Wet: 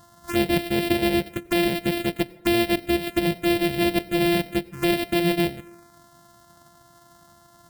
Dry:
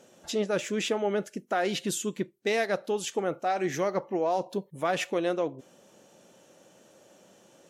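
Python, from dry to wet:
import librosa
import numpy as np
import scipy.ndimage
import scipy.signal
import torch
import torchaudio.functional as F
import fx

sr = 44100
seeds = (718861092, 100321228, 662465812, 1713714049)

y = np.r_[np.sort(x[:len(x) // 128 * 128].reshape(-1, 128), axis=1).ravel(), x[len(x) // 128 * 128:]]
y = fx.env_phaser(y, sr, low_hz=400.0, high_hz=1200.0, full_db=-27.5)
y = fx.rev_plate(y, sr, seeds[0], rt60_s=0.84, hf_ratio=0.5, predelay_ms=80, drr_db=20.0)
y = y * 10.0 ** (8.5 / 20.0)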